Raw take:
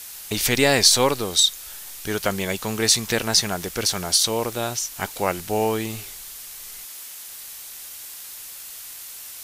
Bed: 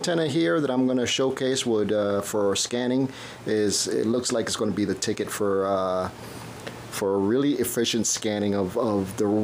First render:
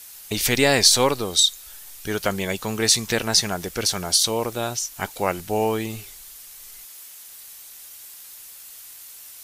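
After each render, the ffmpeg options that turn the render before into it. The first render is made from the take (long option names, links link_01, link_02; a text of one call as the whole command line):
ffmpeg -i in.wav -af "afftdn=noise_reduction=6:noise_floor=-39" out.wav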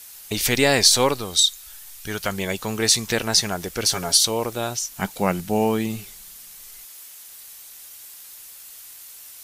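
ffmpeg -i in.wav -filter_complex "[0:a]asettb=1/sr,asplit=3[link_01][link_02][link_03];[link_01]atrim=end=1.174[link_04];[link_02]atrim=start=1.17:end=2.38,asetpts=PTS-STARTPTS,afade=type=in:duration=0.004:curve=qsin,afade=type=out:start_time=1.206:duration=0.004:curve=qsin,equalizer=frequency=410:width=0.75:gain=-5.5[link_05];[link_03]atrim=start=2.376[link_06];[link_04][link_05]acrossfade=duration=0.004:curve1=hsin:curve2=qsin[link_07];[link_07][link_06]acrossfade=duration=0.004:curve1=qsin:curve2=hsin,asettb=1/sr,asplit=3[link_08][link_09][link_10];[link_08]atrim=end=3.854[link_11];[link_09]atrim=start=3.85:end=4.25,asetpts=PTS-STARTPTS,afade=type=in:duration=0.004:curve=qsin,afade=type=out:start_time=0.396:duration=0.004:curve=qsin,aecho=1:1:7.3:0.72,atrim=end_sample=17640[link_12];[link_10]atrim=start=4.246[link_13];[link_11][link_12]acrossfade=duration=0.004:curve1=hsin:curve2=qsin[link_14];[link_14][link_13]acrossfade=duration=0.004:curve1=qsin:curve2=hsin,asettb=1/sr,asplit=3[link_15][link_16][link_17];[link_15]atrim=end=4.894[link_18];[link_16]atrim=start=4.89:end=6.62,asetpts=PTS-STARTPTS,afade=type=in:duration=0.004:curve=qsin,afade=type=out:start_time=1.726:duration=0.004:curve=qsin,equalizer=frequency=190:width_type=o:width=0.59:gain=10.5[link_19];[link_17]atrim=start=6.616[link_20];[link_18][link_19]acrossfade=duration=0.004:curve1=hsin:curve2=qsin[link_21];[link_21][link_20]acrossfade=duration=0.004:curve1=qsin:curve2=hsin" out.wav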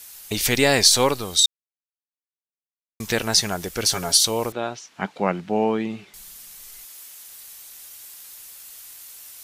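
ffmpeg -i in.wav -filter_complex "[0:a]asettb=1/sr,asplit=3[link_01][link_02][link_03];[link_01]atrim=end=4.524[link_04];[link_02]atrim=start=4.52:end=6.14,asetpts=PTS-STARTPTS,afade=type=in:duration=0.004:curve=qsin,afade=type=out:start_time=1.616:duration=0.004:curve=qsin,highpass=180,lowpass=2800[link_05];[link_03]atrim=start=6.136[link_06];[link_04][link_05]acrossfade=duration=0.004:curve1=hsin:curve2=qsin[link_07];[link_07][link_06]acrossfade=duration=0.004:curve1=qsin:curve2=hsin,asplit=3[link_08][link_09][link_10];[link_08]atrim=end=1.46,asetpts=PTS-STARTPTS,afade=type=out:start_time=1.456:duration=0.004:curve=hsin[link_11];[link_09]atrim=start=1.46:end=3,asetpts=PTS-STARTPTS,volume=0[link_12];[link_10]atrim=start=3,asetpts=PTS-STARTPTS,afade=type=in:duration=0.004:curve=hsin[link_13];[link_11][link_12][link_13]concat=n=3:v=0:a=1" out.wav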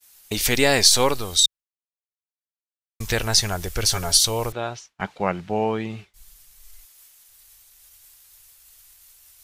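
ffmpeg -i in.wav -af "agate=range=-33dB:threshold=-34dB:ratio=3:detection=peak,asubboost=boost=9:cutoff=76" out.wav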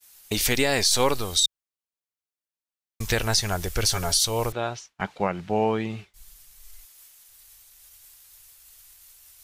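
ffmpeg -i in.wav -af "alimiter=limit=-10dB:level=0:latency=1:release=150" out.wav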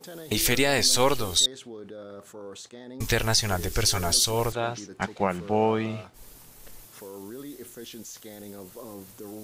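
ffmpeg -i in.wav -i bed.wav -filter_complex "[1:a]volume=-18dB[link_01];[0:a][link_01]amix=inputs=2:normalize=0" out.wav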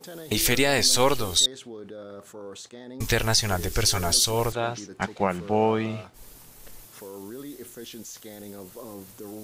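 ffmpeg -i in.wav -af "volume=1dB" out.wav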